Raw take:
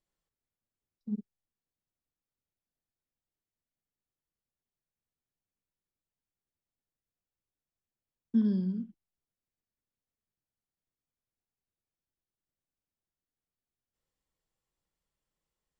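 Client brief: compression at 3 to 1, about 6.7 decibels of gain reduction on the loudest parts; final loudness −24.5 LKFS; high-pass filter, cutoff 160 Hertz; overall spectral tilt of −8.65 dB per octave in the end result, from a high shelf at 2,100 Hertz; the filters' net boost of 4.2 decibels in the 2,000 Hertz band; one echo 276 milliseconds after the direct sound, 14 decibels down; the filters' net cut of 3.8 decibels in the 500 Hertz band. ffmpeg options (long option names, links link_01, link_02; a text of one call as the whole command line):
ffmpeg -i in.wav -af "highpass=160,equalizer=frequency=500:width_type=o:gain=-5.5,equalizer=frequency=2000:width_type=o:gain=4,highshelf=frequency=2100:gain=4.5,acompressor=threshold=-32dB:ratio=3,aecho=1:1:276:0.2,volume=14dB" out.wav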